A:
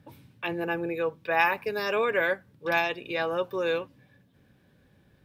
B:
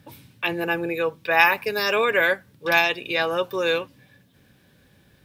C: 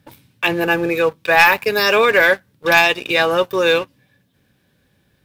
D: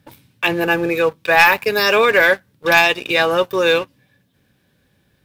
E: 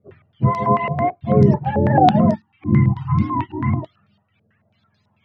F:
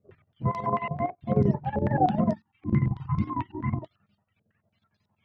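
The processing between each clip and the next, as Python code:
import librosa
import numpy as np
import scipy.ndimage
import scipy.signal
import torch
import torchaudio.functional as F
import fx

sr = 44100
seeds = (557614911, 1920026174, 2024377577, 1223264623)

y1 = fx.high_shelf(x, sr, hz=2200.0, db=9.5)
y1 = y1 * librosa.db_to_amplitude(3.5)
y2 = fx.leveller(y1, sr, passes=2)
y3 = y2
y4 = fx.octave_mirror(y3, sr, pivot_hz=590.0)
y4 = fx.spec_box(y4, sr, start_s=2.34, length_s=1.49, low_hz=380.0, high_hz=760.0, gain_db=-30)
y4 = fx.filter_held_lowpass(y4, sr, hz=9.1, low_hz=480.0, high_hz=5200.0)
y4 = y4 * librosa.db_to_amplitude(-3.0)
y5 = fx.chopper(y4, sr, hz=11.0, depth_pct=65, duty_pct=65)
y5 = y5 * librosa.db_to_amplitude(-8.0)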